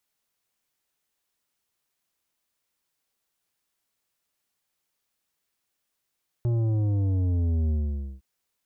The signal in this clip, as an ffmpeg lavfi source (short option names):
-f lavfi -i "aevalsrc='0.075*clip((1.76-t)/0.51,0,1)*tanh(2.99*sin(2*PI*120*1.76/log(65/120)*(exp(log(65/120)*t/1.76)-1)))/tanh(2.99)':d=1.76:s=44100"